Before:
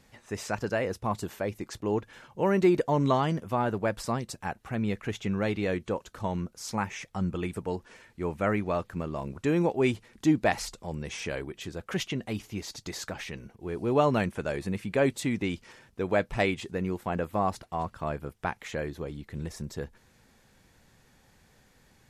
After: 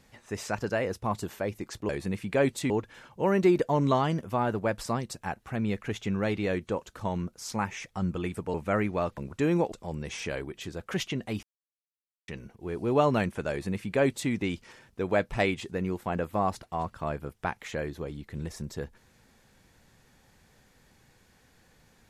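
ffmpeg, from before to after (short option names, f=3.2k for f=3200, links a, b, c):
-filter_complex "[0:a]asplit=8[a][b][c][d][e][f][g][h];[a]atrim=end=1.892[i];[b]atrim=start=14.498:end=15.312[j];[c]atrim=start=1.888:end=7.732[k];[d]atrim=start=8.268:end=8.902[l];[e]atrim=start=9.218:end=9.772[m];[f]atrim=start=10.718:end=12.43,asetpts=PTS-STARTPTS,afade=t=out:st=1.708:d=0.004:c=hsin[n];[g]atrim=start=12.43:end=13.28,asetpts=PTS-STARTPTS,volume=0[o];[h]atrim=start=13.28,asetpts=PTS-STARTPTS,afade=t=in:d=0.004:c=hsin[p];[i][j]acrossfade=d=0.004:c1=hsin:c2=hsin[q];[q][k]acrossfade=d=0.004:c1=hsin:c2=hsin[r];[r][l]acrossfade=d=0.004:c1=hsin:c2=hsin[s];[s][m]acrossfade=d=0.004:c1=hsin:c2=hsin[t];[n][o][p]concat=n=3:v=0:a=1[u];[t][u]acrossfade=d=0.004:c1=hsin:c2=hsin"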